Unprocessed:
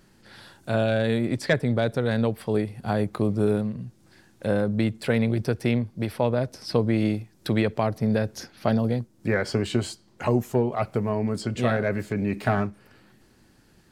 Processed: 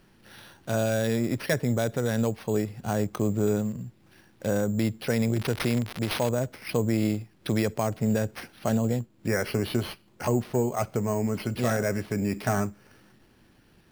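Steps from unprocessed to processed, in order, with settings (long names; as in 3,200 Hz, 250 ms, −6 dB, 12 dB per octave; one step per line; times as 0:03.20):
0:05.36–0:06.32: spike at every zero crossing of −23 dBFS
in parallel at −0.5 dB: brickwall limiter −16 dBFS, peak gain reduction 9 dB
on the sum: decimation without filtering 6×
level −7 dB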